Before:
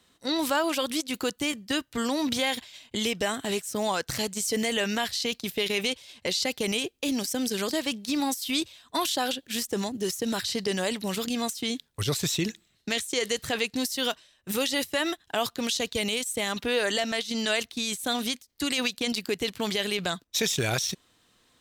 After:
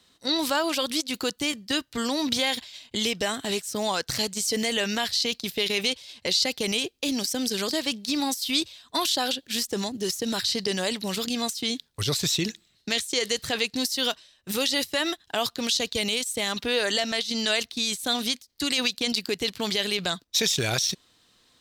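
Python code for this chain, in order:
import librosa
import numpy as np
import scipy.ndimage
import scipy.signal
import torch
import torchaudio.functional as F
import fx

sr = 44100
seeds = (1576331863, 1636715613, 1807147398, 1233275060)

y = fx.peak_eq(x, sr, hz=4500.0, db=6.5, octaves=0.87)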